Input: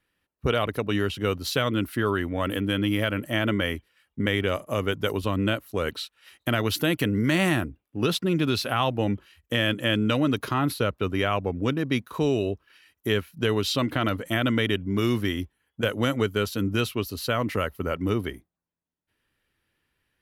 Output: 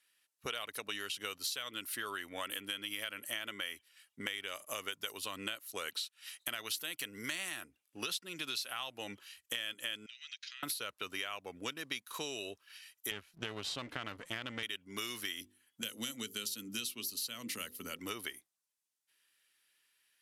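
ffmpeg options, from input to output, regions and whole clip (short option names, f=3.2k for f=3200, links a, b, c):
-filter_complex "[0:a]asettb=1/sr,asplit=3[a][b][c];[a]atrim=end=10.064[d];[b]atrim=start=10.06:end=10.63,asetpts=PTS-STARTPTS,afade=t=in:d=0.004:c=qsin,afade=t=out:st=0.566:d=0.004:c=qsin,asuperpass=centerf=3400:order=8:qfactor=0.8,acompressor=threshold=-47dB:ratio=5:attack=3.2:release=140:knee=1:detection=peak[e];[c]atrim=start=10.626[f];[d][e]acrossfade=d=0.004:c1=hsin:c2=qsin[g];[g][f]acrossfade=d=0.004:c1=qsin:c2=hsin,asettb=1/sr,asplit=3[h][i][j];[h]atrim=end=13.114[k];[i]atrim=start=13.11:end=14.63,asetpts=PTS-STARTPTS,afade=t=in:d=0.004:c=qsin,afade=t=out:st=1.516:d=0.004:c=qsin,aeval=exprs='if(lt(val(0),0),0.251*val(0),val(0))':c=same,aemphasis=mode=reproduction:type=riaa[l];[j]atrim=start=14.626[m];[k][l]acrossfade=d=0.004:c1=hsin:c2=qsin[n];[n][m]acrossfade=d=0.004:c1=qsin:c2=hsin,asettb=1/sr,asplit=3[o][p][q];[o]atrim=end=15.414[r];[p]atrim=start=15.41:end=17.99,asetpts=PTS-STARTPTS,afade=t=in:d=0.004:c=qsin,afade=t=out:st=2.576:d=0.004:c=qsin,equalizer=f=230:w=2.1:g=9,bandreject=f=50:t=h:w=6,bandreject=f=100:t=h:w=6,bandreject=f=150:t=h:w=6,bandreject=f=200:t=h:w=6,bandreject=f=250:t=h:w=6,bandreject=f=300:t=h:w=6,bandreject=f=350:t=h:w=6,bandreject=f=400:t=h:w=6,bandreject=f=450:t=h:w=6,bandreject=f=500:t=h:w=6,acrossover=split=340|3000[s][t][u];[t]acompressor=threshold=-59dB:ratio=1.5:attack=3.2:release=140:knee=2.83:detection=peak[v];[s][v][u]amix=inputs=3:normalize=0[w];[q]atrim=start=17.986[x];[r][w]acrossfade=d=0.004:c1=hsin:c2=qsin[y];[y][x]acrossfade=d=0.004:c1=qsin:c2=hsin,lowpass=10k,aderivative,acompressor=threshold=-47dB:ratio=6,volume=10.5dB"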